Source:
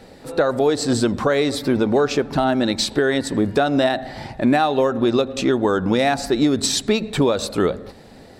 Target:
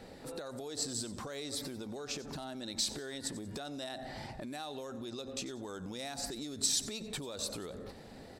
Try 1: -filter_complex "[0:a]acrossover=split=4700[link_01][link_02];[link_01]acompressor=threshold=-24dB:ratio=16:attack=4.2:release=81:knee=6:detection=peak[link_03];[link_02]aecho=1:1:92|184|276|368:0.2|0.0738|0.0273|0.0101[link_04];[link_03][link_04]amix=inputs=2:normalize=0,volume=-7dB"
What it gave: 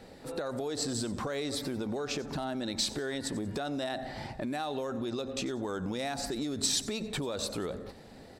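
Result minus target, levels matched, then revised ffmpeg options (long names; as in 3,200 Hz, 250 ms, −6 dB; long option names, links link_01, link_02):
downward compressor: peak gain reduction −8.5 dB
-filter_complex "[0:a]acrossover=split=4700[link_01][link_02];[link_01]acompressor=threshold=-33dB:ratio=16:attack=4.2:release=81:knee=6:detection=peak[link_03];[link_02]aecho=1:1:92|184|276|368:0.2|0.0738|0.0273|0.0101[link_04];[link_03][link_04]amix=inputs=2:normalize=0,volume=-7dB"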